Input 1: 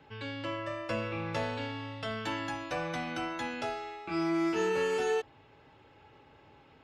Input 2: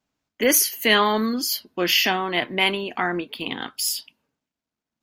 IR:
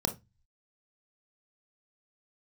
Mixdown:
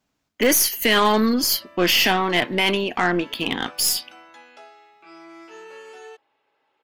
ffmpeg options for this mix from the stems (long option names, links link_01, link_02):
-filter_complex "[0:a]highpass=470,adelay=950,volume=-9dB[link_01];[1:a]alimiter=limit=-11.5dB:level=0:latency=1:release=19,aeval=exprs='0.266*(cos(1*acos(clip(val(0)/0.266,-1,1)))-cos(1*PI/2))+0.0266*(cos(2*acos(clip(val(0)/0.266,-1,1)))-cos(2*PI/2))+0.015*(cos(5*acos(clip(val(0)/0.266,-1,1)))-cos(5*PI/2))+0.0106*(cos(6*acos(clip(val(0)/0.266,-1,1)))-cos(6*PI/2))':channel_layout=same,volume=3dB[link_02];[link_01][link_02]amix=inputs=2:normalize=0"